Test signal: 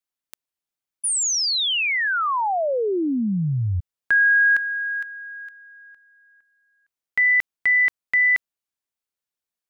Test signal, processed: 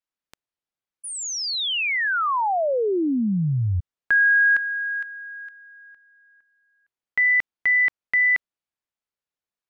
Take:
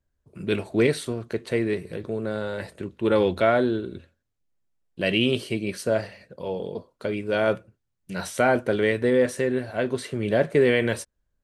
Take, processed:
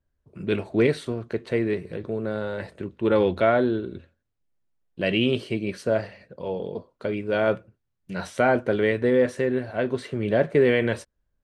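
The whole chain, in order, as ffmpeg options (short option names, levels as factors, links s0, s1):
-af "aemphasis=mode=reproduction:type=50fm"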